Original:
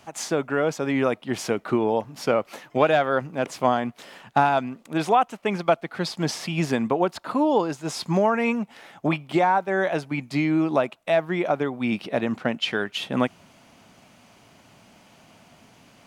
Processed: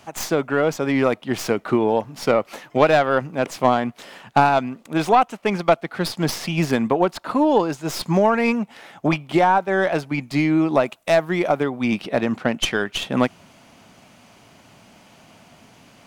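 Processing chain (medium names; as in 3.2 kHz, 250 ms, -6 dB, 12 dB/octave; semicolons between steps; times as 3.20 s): tracing distortion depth 0.062 ms; 10.85–11.64 s: treble shelf 5.9 kHz -> 10 kHz +10.5 dB; trim +3.5 dB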